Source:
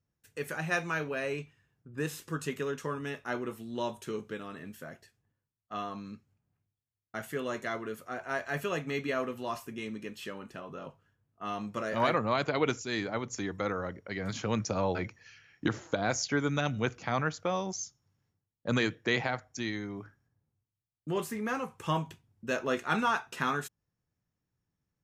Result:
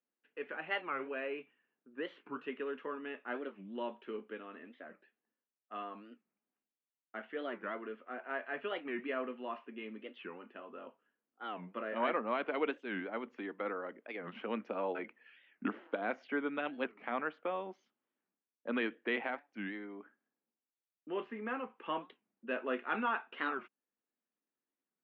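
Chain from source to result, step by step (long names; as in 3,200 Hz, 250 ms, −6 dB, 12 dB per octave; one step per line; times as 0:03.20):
Chebyshev band-pass filter 230–3,000 Hz, order 4
wow of a warped record 45 rpm, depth 250 cents
level −5 dB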